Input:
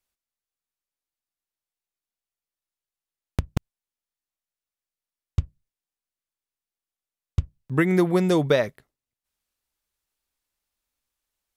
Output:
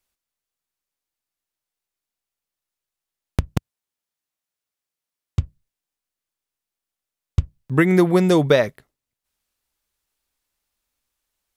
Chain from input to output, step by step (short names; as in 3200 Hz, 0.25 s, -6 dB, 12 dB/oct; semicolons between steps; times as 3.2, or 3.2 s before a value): 3.56–5.42 HPF 73 Hz; gain +4.5 dB